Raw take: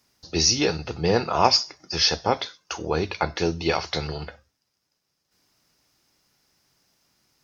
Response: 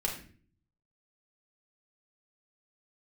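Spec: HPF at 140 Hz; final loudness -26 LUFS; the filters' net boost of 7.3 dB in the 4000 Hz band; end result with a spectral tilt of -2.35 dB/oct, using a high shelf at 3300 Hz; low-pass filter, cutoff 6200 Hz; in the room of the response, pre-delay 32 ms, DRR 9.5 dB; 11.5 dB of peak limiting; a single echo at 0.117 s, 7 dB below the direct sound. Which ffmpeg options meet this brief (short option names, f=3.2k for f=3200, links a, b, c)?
-filter_complex "[0:a]highpass=140,lowpass=6.2k,highshelf=f=3.3k:g=6.5,equalizer=f=4k:t=o:g=5.5,alimiter=limit=-10dB:level=0:latency=1,aecho=1:1:117:0.447,asplit=2[a][b];[1:a]atrim=start_sample=2205,adelay=32[c];[b][c]afir=irnorm=-1:irlink=0,volume=-14.5dB[d];[a][d]amix=inputs=2:normalize=0,volume=-4.5dB"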